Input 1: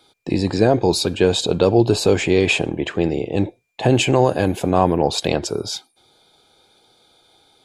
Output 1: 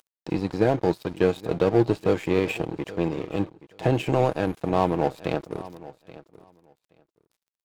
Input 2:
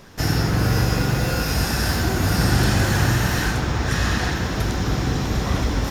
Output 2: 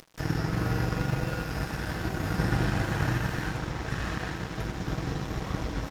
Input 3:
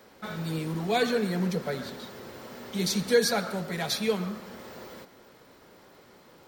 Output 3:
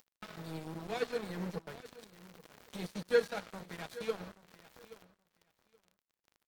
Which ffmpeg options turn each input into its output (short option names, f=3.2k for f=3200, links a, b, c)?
-filter_complex "[0:a]acrossover=split=2800[a][b];[b]acompressor=threshold=-39dB:ratio=4:attack=1:release=60[c];[a][c]amix=inputs=2:normalize=0,aecho=1:1:6.3:0.38,aeval=exprs='0.841*(cos(1*acos(clip(val(0)/0.841,-1,1)))-cos(1*PI/2))+0.0335*(cos(7*acos(clip(val(0)/0.841,-1,1)))-cos(7*PI/2))':c=same,acompressor=mode=upward:threshold=-28dB:ratio=2.5,aeval=exprs='sgn(val(0))*max(abs(val(0))-0.0224,0)':c=same,asplit=2[d][e];[e]aecho=0:1:826|1652:0.126|0.0201[f];[d][f]amix=inputs=2:normalize=0,volume=-5.5dB"